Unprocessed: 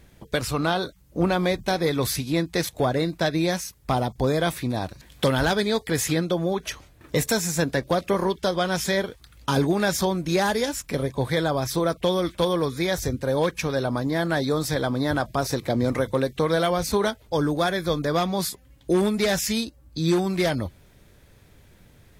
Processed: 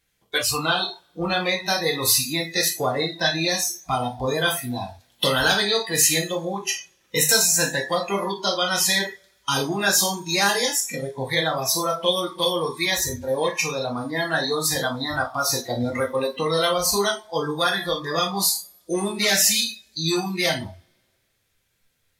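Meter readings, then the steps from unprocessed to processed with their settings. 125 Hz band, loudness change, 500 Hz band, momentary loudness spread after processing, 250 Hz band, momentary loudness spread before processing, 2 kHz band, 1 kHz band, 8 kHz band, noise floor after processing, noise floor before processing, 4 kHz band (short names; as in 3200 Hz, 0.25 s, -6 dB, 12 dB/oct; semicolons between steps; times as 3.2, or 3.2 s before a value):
-5.5 dB, +2.5 dB, -1.5 dB, 9 LU, -4.5 dB, 6 LU, +5.0 dB, +1.5 dB, +10.5 dB, -69 dBFS, -54 dBFS, +8.5 dB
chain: tilt shelf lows -8 dB, about 1100 Hz; two-slope reverb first 0.48 s, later 2 s, from -18 dB, DRR -1 dB; spectral noise reduction 19 dB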